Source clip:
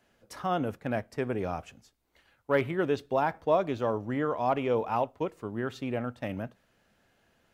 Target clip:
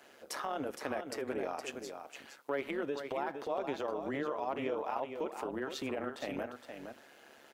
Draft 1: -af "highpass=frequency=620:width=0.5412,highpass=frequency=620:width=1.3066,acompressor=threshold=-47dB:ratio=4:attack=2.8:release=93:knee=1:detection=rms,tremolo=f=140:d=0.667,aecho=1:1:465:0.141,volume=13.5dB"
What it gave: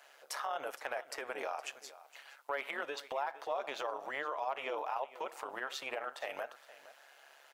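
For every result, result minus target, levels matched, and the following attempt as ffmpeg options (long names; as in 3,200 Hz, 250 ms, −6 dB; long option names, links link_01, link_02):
250 Hz band −14.0 dB; echo-to-direct −9.5 dB
-af "highpass=frequency=280:width=0.5412,highpass=frequency=280:width=1.3066,acompressor=threshold=-47dB:ratio=4:attack=2.8:release=93:knee=1:detection=rms,tremolo=f=140:d=0.667,aecho=1:1:465:0.141,volume=13.5dB"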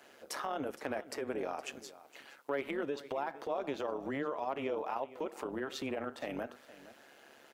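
echo-to-direct −9.5 dB
-af "highpass=frequency=280:width=0.5412,highpass=frequency=280:width=1.3066,acompressor=threshold=-47dB:ratio=4:attack=2.8:release=93:knee=1:detection=rms,tremolo=f=140:d=0.667,aecho=1:1:465:0.422,volume=13.5dB"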